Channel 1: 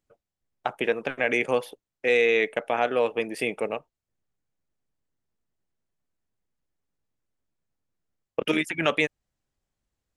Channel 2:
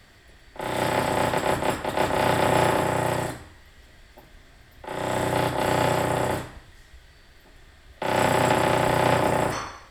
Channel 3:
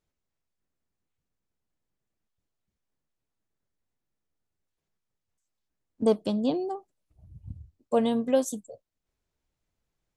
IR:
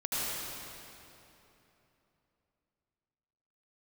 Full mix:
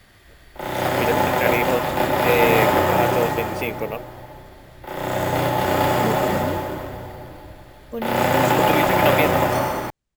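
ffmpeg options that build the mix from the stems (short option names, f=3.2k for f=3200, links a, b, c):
-filter_complex "[0:a]adelay=200,volume=1dB[a];[1:a]volume=-1.5dB,asplit=2[b][c];[c]volume=-6dB[d];[2:a]equalizer=f=770:w=1.8:g=-13,volume=-3dB[e];[3:a]atrim=start_sample=2205[f];[d][f]afir=irnorm=-1:irlink=0[g];[a][b][e][g]amix=inputs=4:normalize=0,lowpass=8.8k,acrusher=samples=3:mix=1:aa=0.000001"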